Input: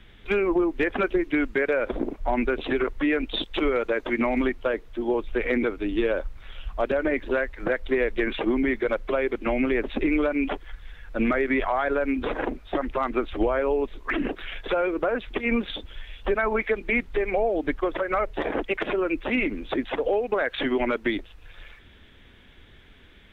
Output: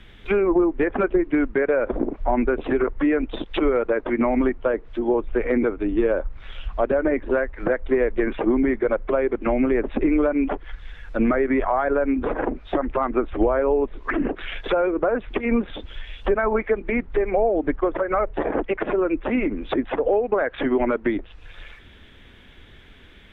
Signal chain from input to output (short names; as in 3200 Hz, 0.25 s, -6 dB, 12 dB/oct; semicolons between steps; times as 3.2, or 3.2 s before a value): treble ducked by the level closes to 1400 Hz, closed at -24 dBFS; gain +4 dB